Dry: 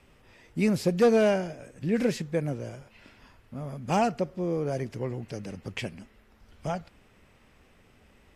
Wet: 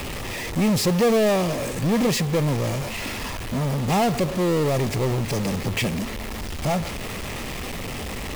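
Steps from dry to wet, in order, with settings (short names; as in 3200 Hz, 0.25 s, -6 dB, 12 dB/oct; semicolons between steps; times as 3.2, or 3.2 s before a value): power-law curve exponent 0.35; notch 1500 Hz, Q 5.3; requantised 6-bit, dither none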